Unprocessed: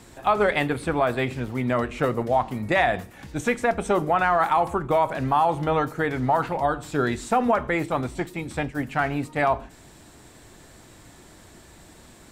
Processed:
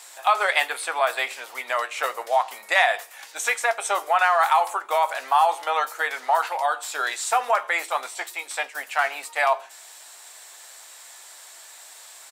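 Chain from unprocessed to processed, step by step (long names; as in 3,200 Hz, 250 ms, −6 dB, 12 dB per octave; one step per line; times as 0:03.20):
high-pass filter 660 Hz 24 dB per octave
high-shelf EQ 3,100 Hz +10 dB
double-tracking delay 15 ms −11.5 dB
level +1.5 dB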